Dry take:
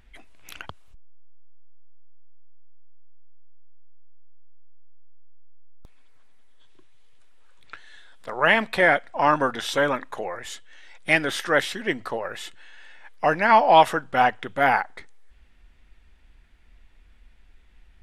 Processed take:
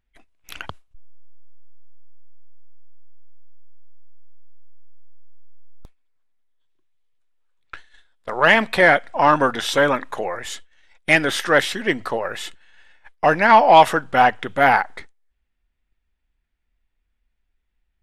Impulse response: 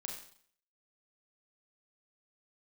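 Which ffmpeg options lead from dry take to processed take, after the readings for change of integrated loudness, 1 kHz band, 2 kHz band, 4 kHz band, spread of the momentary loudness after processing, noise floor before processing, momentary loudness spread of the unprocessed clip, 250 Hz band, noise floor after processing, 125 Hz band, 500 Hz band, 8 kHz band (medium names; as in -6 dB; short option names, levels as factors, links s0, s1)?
+4.5 dB, +4.5 dB, +4.5 dB, +4.5 dB, 19 LU, -54 dBFS, 20 LU, +5.0 dB, -73 dBFS, +5.0 dB, +4.5 dB, +5.0 dB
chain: -af "agate=range=0.0631:threshold=0.00891:ratio=16:detection=peak,acontrast=30"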